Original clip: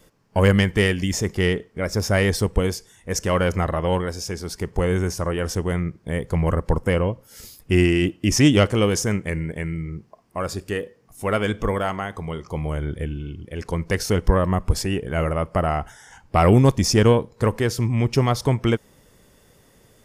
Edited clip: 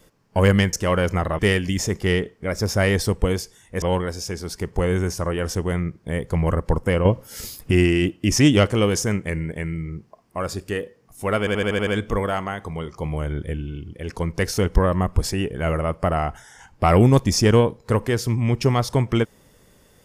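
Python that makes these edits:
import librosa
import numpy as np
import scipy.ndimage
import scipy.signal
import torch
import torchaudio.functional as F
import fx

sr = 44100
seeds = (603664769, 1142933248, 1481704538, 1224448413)

y = fx.edit(x, sr, fx.move(start_s=3.16, length_s=0.66, to_s=0.73),
    fx.clip_gain(start_s=7.05, length_s=0.66, db=7.5),
    fx.stutter(start_s=11.39, slice_s=0.08, count=7), tone=tone)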